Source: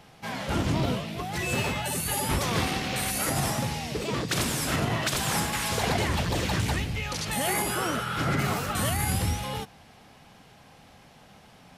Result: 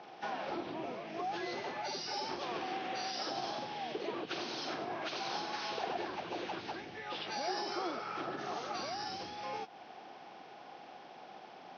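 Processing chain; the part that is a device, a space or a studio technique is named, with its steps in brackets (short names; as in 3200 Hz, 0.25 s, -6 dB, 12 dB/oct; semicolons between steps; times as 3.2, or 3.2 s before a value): hearing aid with frequency lowering (nonlinear frequency compression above 1200 Hz 1.5:1; compressor 4:1, threshold -39 dBFS, peak gain reduction 14 dB; speaker cabinet 350–6100 Hz, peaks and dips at 350 Hz +9 dB, 750 Hz +7 dB, 2000 Hz -5 dB); gain +1 dB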